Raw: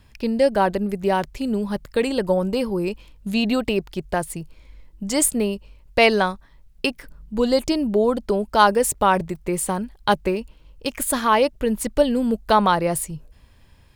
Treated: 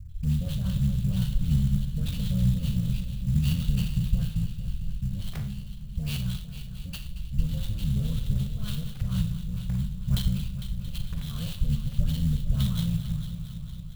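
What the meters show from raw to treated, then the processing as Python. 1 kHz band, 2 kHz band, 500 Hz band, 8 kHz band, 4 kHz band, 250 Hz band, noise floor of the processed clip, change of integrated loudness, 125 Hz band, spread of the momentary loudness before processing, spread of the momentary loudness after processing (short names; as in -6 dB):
under -30 dB, -22.0 dB, -31.5 dB, -18.5 dB, -10.0 dB, -8.0 dB, -39 dBFS, -8.0 dB, +8.5 dB, 11 LU, 10 LU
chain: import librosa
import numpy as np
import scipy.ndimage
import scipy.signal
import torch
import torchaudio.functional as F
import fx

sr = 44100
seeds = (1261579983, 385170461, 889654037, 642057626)

p1 = fx.cycle_switch(x, sr, every=3, mode='muted')
p2 = scipy.signal.sosfilt(scipy.signal.ellip(3, 1.0, 40, [150.0, 4600.0], 'bandstop', fs=sr, output='sos'), p1)
p3 = fx.peak_eq(p2, sr, hz=250.0, db=-11.0, octaves=1.2)
p4 = fx.rider(p3, sr, range_db=10, speed_s=0.5)
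p5 = p3 + F.gain(torch.from_numpy(p4), 1.0).numpy()
p6 = fx.dispersion(p5, sr, late='highs', ms=111.0, hz=1500.0)
p7 = p6 + fx.echo_heads(p6, sr, ms=226, heads='first and second', feedback_pct=62, wet_db=-14, dry=0)
p8 = fx.fold_sine(p7, sr, drive_db=6, ceiling_db=-1.5)
p9 = fx.rev_schroeder(p8, sr, rt60_s=0.43, comb_ms=32, drr_db=6.5)
p10 = np.repeat(scipy.signal.resample_poly(p9, 1, 6), 6)[:len(p9)]
p11 = fx.clock_jitter(p10, sr, seeds[0], jitter_ms=0.028)
y = F.gain(torch.from_numpy(p11), -5.5).numpy()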